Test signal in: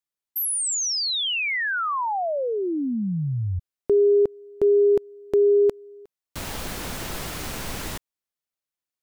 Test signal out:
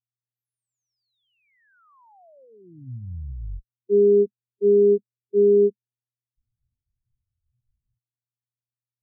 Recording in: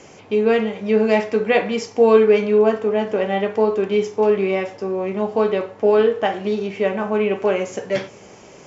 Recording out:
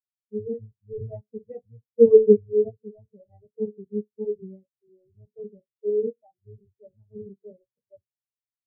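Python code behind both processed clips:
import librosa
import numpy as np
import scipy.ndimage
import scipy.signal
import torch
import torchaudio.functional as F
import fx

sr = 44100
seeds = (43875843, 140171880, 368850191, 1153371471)

y = fx.octave_divider(x, sr, octaves=1, level_db=4.0)
y = fx.dmg_buzz(y, sr, base_hz=120.0, harmonics=5, level_db=-36.0, tilt_db=-5, odd_only=False)
y = fx.spectral_expand(y, sr, expansion=4.0)
y = y * 10.0 ** (-1.5 / 20.0)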